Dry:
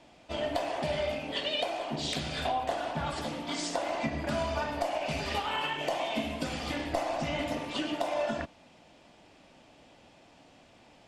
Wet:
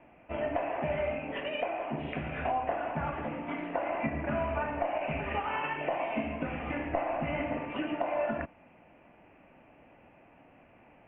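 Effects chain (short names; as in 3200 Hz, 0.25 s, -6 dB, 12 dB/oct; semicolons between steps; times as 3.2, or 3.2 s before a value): steep low-pass 2700 Hz 72 dB/oct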